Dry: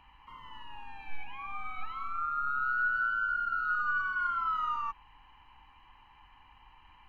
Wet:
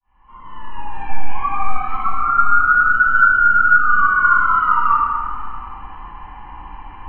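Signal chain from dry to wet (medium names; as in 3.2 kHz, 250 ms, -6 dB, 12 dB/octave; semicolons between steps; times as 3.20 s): fade-in on the opening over 1.25 s; low-pass 1.4 kHz 12 dB/octave; in parallel at +1 dB: compression, threshold -42 dBFS, peak gain reduction 12 dB; on the sum: reverberation RT60 2.4 s, pre-delay 3 ms, DRR -17 dB; trim -2 dB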